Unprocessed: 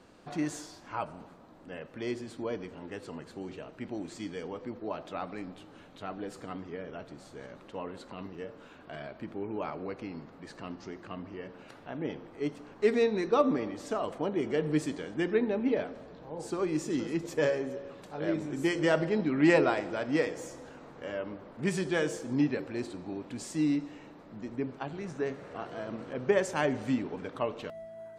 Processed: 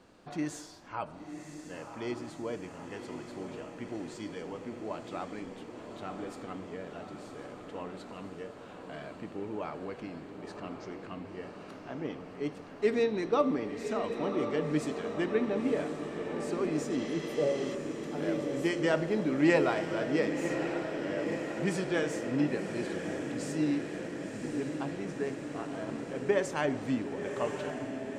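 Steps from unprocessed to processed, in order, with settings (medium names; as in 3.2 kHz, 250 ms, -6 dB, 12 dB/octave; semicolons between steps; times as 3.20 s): spectral replace 17.01–17.72 s, 860–8600 Hz before; echo that smears into a reverb 1049 ms, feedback 70%, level -7 dB; trim -2 dB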